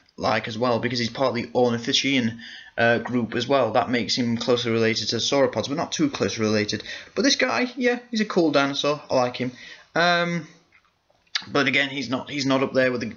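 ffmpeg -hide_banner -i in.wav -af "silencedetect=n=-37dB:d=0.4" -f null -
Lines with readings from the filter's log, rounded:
silence_start: 10.46
silence_end: 11.35 | silence_duration: 0.89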